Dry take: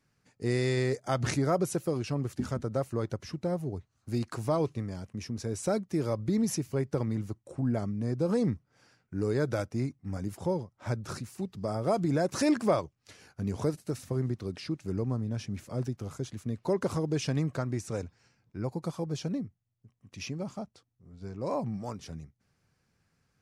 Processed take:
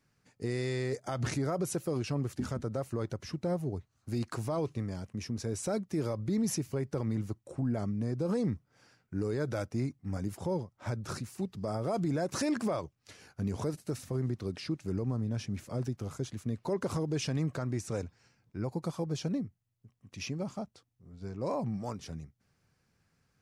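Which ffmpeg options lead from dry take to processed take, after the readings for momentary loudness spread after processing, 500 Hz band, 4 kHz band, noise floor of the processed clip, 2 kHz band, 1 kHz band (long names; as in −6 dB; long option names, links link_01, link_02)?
8 LU, −3.5 dB, −1.5 dB, −76 dBFS, −3.5 dB, −4.0 dB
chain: -af "alimiter=limit=-23.5dB:level=0:latency=1:release=40"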